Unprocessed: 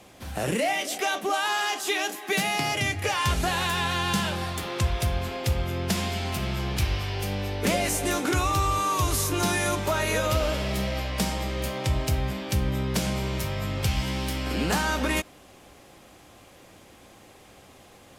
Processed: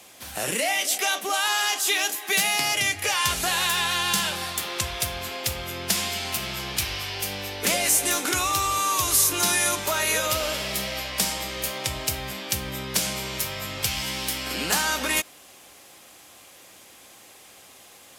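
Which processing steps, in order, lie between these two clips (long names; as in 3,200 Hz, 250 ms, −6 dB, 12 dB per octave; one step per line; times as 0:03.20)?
spectral tilt +3 dB per octave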